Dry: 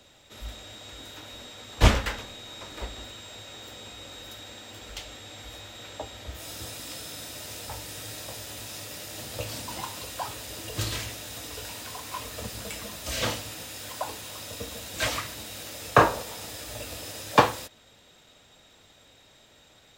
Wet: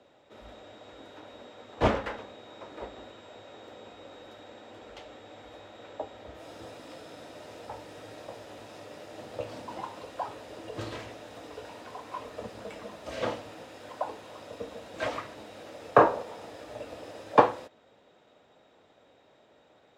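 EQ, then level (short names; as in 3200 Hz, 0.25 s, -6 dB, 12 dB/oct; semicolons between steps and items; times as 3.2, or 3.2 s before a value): band-pass 530 Hz, Q 0.78; +2.0 dB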